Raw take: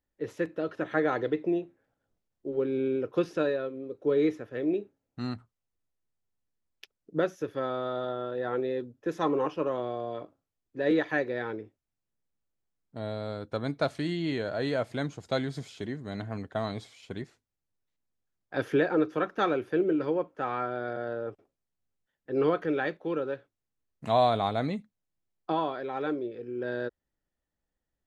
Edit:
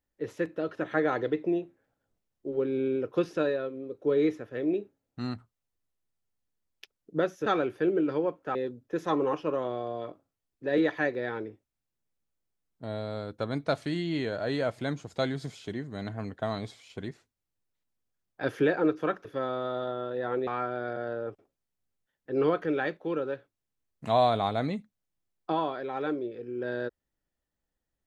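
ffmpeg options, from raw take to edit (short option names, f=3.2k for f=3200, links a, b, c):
-filter_complex "[0:a]asplit=5[a][b][c][d][e];[a]atrim=end=7.462[f];[b]atrim=start=19.378:end=20.472[g];[c]atrim=start=8.678:end=19.382[h];[d]atrim=start=7.458:end=8.682[i];[e]atrim=start=20.468[j];[f][g]acrossfade=d=0.004:c1=hsin:c2=hsin[k];[k][h]acrossfade=d=0.004:c1=hsin:c2=hsin[l];[l][i]acrossfade=d=0.004:c1=hsin:c2=hsin[m];[m][j]acrossfade=d=0.004:c1=hsin:c2=hsin"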